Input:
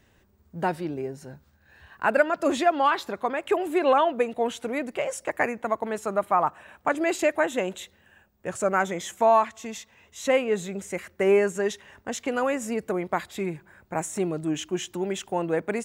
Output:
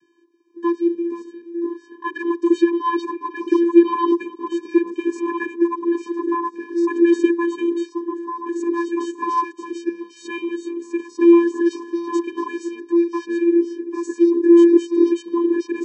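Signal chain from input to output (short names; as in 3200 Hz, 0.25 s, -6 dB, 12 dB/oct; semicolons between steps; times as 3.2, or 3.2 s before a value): echoes that change speed 0.311 s, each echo -4 st, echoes 3, each echo -6 dB; bell 5200 Hz +3 dB 0.77 oct; vocoder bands 16, square 341 Hz; gain +6.5 dB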